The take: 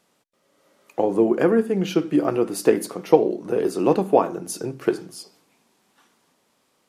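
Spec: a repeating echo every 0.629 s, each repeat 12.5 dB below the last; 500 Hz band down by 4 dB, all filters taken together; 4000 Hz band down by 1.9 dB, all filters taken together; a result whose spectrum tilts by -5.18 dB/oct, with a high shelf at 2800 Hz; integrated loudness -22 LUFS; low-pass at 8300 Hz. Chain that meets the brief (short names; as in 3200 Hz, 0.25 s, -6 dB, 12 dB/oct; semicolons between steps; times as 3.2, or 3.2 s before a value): LPF 8300 Hz; bell 500 Hz -5 dB; high shelf 2800 Hz +5.5 dB; bell 4000 Hz -7.5 dB; feedback echo 0.629 s, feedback 24%, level -12.5 dB; gain +2 dB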